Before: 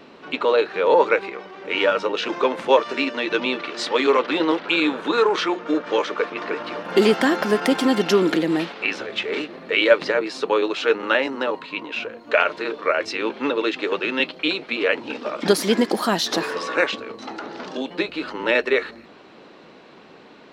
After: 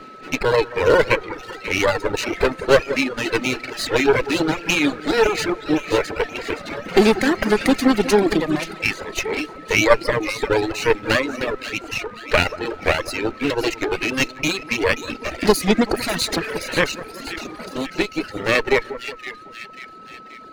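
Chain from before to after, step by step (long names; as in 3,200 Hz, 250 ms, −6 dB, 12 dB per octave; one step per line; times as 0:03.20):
lower of the sound and its delayed copy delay 0.46 ms
on a send: echo with a time of its own for lows and highs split 1,800 Hz, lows 185 ms, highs 530 ms, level −9 dB
on the sum: reverb reduction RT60 1.2 s
steady tone 1,300 Hz −43 dBFS
wow of a warped record 33 1/3 rpm, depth 100 cents
level +3.5 dB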